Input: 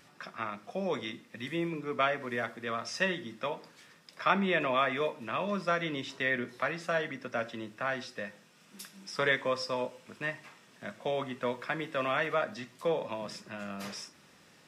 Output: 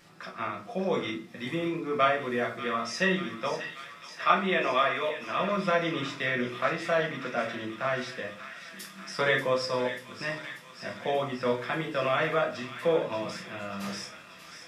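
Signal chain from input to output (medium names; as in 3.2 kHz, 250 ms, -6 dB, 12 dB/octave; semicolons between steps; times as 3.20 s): 4.24–5.38 s: bass shelf 280 Hz -11 dB; feedback echo behind a high-pass 587 ms, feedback 71%, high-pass 1.6 kHz, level -9.5 dB; reverberation RT60 0.35 s, pre-delay 6 ms, DRR -1 dB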